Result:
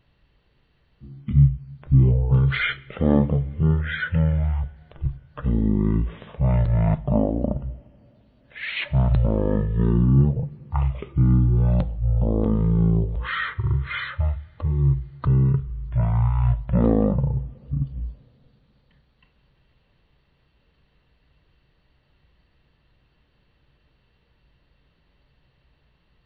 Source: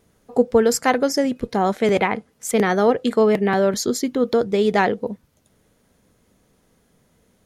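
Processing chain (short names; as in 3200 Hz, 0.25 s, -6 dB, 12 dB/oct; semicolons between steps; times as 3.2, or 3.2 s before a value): wide varispeed 0.284×; two-slope reverb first 0.43 s, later 4.1 s, from -18 dB, DRR 16.5 dB; gain -2 dB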